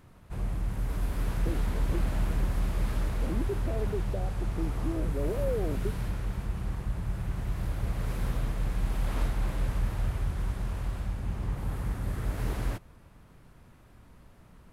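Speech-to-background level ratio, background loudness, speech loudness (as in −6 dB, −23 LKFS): −4.0 dB, −33.5 LKFS, −37.5 LKFS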